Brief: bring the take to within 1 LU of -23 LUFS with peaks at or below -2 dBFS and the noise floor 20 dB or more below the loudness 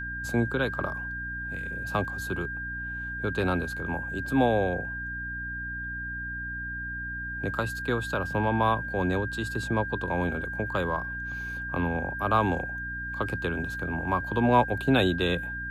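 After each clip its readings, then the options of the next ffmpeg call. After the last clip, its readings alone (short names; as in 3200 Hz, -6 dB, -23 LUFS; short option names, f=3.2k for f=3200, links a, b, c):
hum 60 Hz; harmonics up to 300 Hz; hum level -38 dBFS; steady tone 1600 Hz; tone level -33 dBFS; loudness -29.0 LUFS; peak -9.0 dBFS; loudness target -23.0 LUFS
-> -af "bandreject=f=60:t=h:w=4,bandreject=f=120:t=h:w=4,bandreject=f=180:t=h:w=4,bandreject=f=240:t=h:w=4,bandreject=f=300:t=h:w=4"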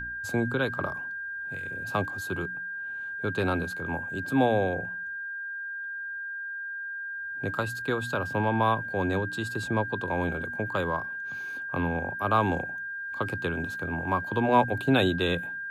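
hum none; steady tone 1600 Hz; tone level -33 dBFS
-> -af "bandreject=f=1.6k:w=30"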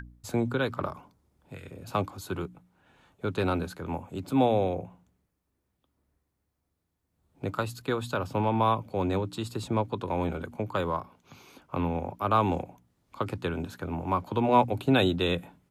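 steady tone none; loudness -29.5 LUFS; peak -9.5 dBFS; loudness target -23.0 LUFS
-> -af "volume=6.5dB"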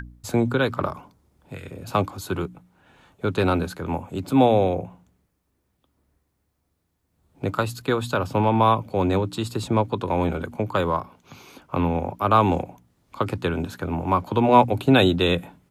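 loudness -23.0 LUFS; peak -3.0 dBFS; noise floor -73 dBFS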